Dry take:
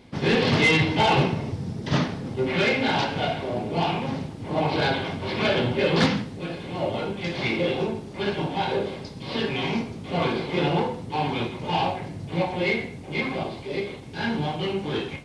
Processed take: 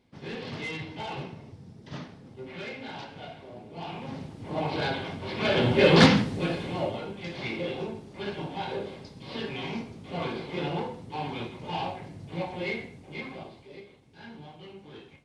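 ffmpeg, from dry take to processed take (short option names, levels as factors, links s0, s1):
-af "volume=1.58,afade=t=in:st=3.75:d=0.61:silence=0.298538,afade=t=in:st=5.39:d=0.49:silence=0.316228,afade=t=out:st=6.42:d=0.58:silence=0.251189,afade=t=out:st=12.74:d=1.13:silence=0.281838"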